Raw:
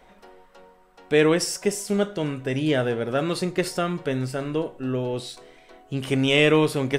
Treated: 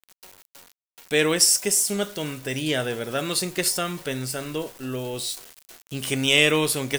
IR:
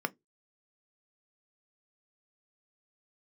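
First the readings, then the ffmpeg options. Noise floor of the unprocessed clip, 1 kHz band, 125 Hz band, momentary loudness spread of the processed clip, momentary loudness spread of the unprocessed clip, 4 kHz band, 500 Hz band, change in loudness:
-54 dBFS, -2.0 dB, -4.5 dB, 14 LU, 11 LU, +5.5 dB, -4.0 dB, +1.0 dB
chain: -af "aeval=exprs='val(0)*gte(abs(val(0)),0.00631)':c=same,crystalizer=i=5.5:c=0,volume=0.596"

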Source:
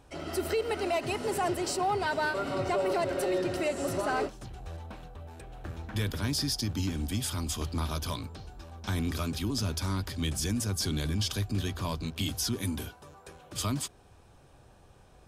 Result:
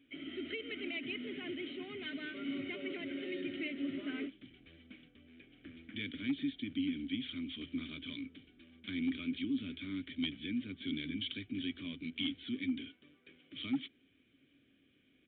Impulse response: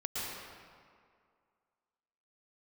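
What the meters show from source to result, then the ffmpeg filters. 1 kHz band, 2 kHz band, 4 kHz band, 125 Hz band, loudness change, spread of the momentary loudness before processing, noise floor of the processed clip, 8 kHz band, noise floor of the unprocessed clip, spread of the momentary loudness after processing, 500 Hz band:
-26.5 dB, -6.5 dB, -6.5 dB, -20.0 dB, -8.5 dB, 14 LU, -71 dBFS, under -40 dB, -57 dBFS, 14 LU, -15.5 dB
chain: -filter_complex "[0:a]asplit=3[s0][s1][s2];[s0]bandpass=f=270:t=q:w=8,volume=1[s3];[s1]bandpass=f=2290:t=q:w=8,volume=0.501[s4];[s2]bandpass=f=3010:t=q:w=8,volume=0.355[s5];[s3][s4][s5]amix=inputs=3:normalize=0,tiltshelf=f=1100:g=-3.5,aresample=8000,volume=44.7,asoftclip=hard,volume=0.0224,aresample=44100,volume=2"

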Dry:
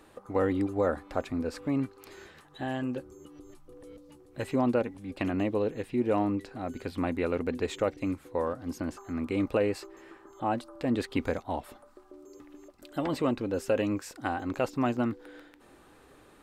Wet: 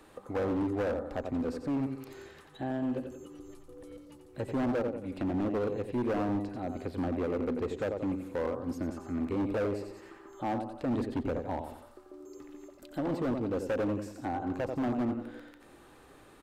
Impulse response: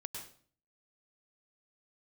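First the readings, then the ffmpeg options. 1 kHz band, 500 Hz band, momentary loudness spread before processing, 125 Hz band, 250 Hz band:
-3.5 dB, -2.5 dB, 21 LU, -1.5 dB, -1.5 dB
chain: -filter_complex "[0:a]aecho=1:1:89|178|267|356|445:0.398|0.163|0.0669|0.0274|0.0112,acrossover=split=350|1000[s0][s1][s2];[s2]acompressor=threshold=0.00224:ratio=6[s3];[s0][s1][s3]amix=inputs=3:normalize=0,volume=22.4,asoftclip=hard,volume=0.0447"

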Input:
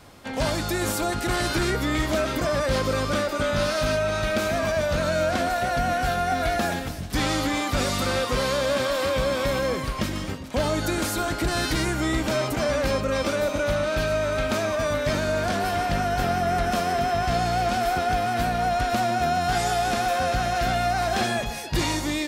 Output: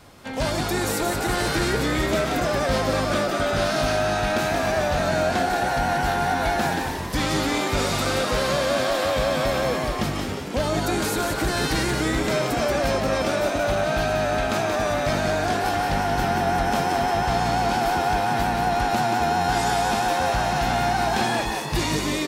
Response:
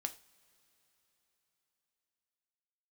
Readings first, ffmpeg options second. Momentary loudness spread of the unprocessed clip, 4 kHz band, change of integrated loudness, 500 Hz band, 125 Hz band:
2 LU, +1.5 dB, +1.5 dB, +1.0 dB, +1.0 dB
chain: -filter_complex "[0:a]asplit=7[s0][s1][s2][s3][s4][s5][s6];[s1]adelay=179,afreqshift=98,volume=0.562[s7];[s2]adelay=358,afreqshift=196,volume=0.288[s8];[s3]adelay=537,afreqshift=294,volume=0.146[s9];[s4]adelay=716,afreqshift=392,volume=0.075[s10];[s5]adelay=895,afreqshift=490,volume=0.038[s11];[s6]adelay=1074,afreqshift=588,volume=0.0195[s12];[s0][s7][s8][s9][s10][s11][s12]amix=inputs=7:normalize=0"

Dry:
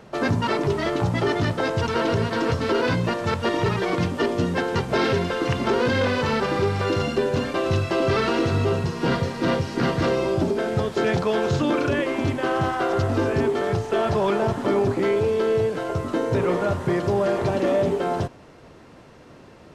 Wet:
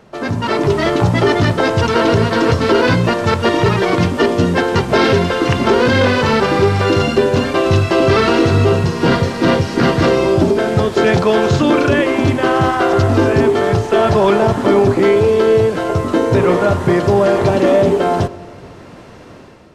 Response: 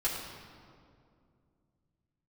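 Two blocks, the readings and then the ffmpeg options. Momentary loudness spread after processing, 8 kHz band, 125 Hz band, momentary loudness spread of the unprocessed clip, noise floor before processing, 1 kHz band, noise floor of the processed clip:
3 LU, +9.0 dB, +9.0 dB, 3 LU, -47 dBFS, +9.0 dB, -37 dBFS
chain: -filter_complex "[0:a]dynaudnorm=f=200:g=5:m=2.99,asplit=2[s0][s1];[1:a]atrim=start_sample=2205[s2];[s1][s2]afir=irnorm=-1:irlink=0,volume=0.0794[s3];[s0][s3]amix=inputs=2:normalize=0"

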